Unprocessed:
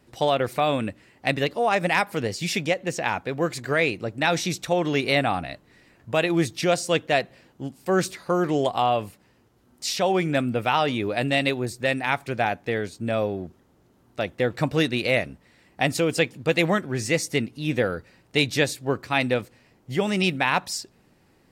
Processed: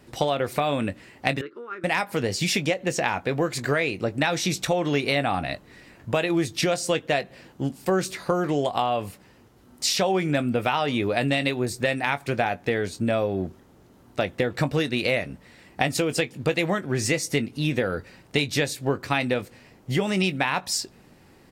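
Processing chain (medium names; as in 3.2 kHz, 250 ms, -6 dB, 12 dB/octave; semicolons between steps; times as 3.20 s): compression, threshold -27 dBFS, peak gain reduction 11 dB; doubling 21 ms -13 dB; 1.41–1.84 s: two resonant band-passes 700 Hz, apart 1.9 oct; trim +6.5 dB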